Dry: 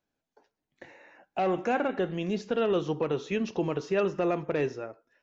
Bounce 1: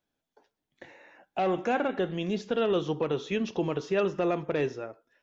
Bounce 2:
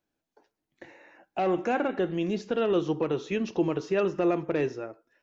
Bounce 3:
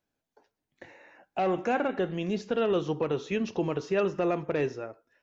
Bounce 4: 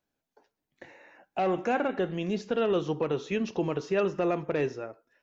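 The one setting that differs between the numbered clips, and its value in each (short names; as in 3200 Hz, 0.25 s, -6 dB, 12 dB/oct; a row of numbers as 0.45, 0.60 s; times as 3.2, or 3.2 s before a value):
bell, frequency: 3400, 330, 98, 15000 Hz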